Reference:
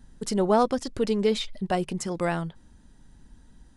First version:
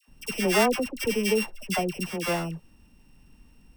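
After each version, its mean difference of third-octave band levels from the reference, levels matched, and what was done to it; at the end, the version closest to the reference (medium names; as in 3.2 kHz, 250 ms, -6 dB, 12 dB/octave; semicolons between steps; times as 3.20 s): 12.0 dB: sorted samples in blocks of 16 samples; bass shelf 190 Hz -3.5 dB; phase dispersion lows, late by 83 ms, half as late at 960 Hz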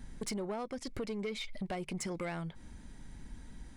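5.5 dB: peaking EQ 2.2 kHz +12.5 dB 0.22 oct; compression 16:1, threshold -36 dBFS, peak gain reduction 21 dB; saturation -34.5 dBFS, distortion -15 dB; trim +4 dB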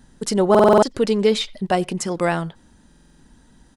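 2.5 dB: bass shelf 96 Hz -11 dB; speakerphone echo 90 ms, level -26 dB; buffer glitch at 0.50/2.87 s, samples 2048, times 6; trim +7 dB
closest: third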